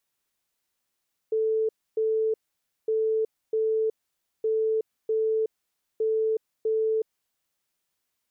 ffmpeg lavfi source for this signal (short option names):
-f lavfi -i "aevalsrc='0.0841*sin(2*PI*440*t)*clip(min(mod(mod(t,1.56),0.65),0.37-mod(mod(t,1.56),0.65))/0.005,0,1)*lt(mod(t,1.56),1.3)':d=6.24:s=44100"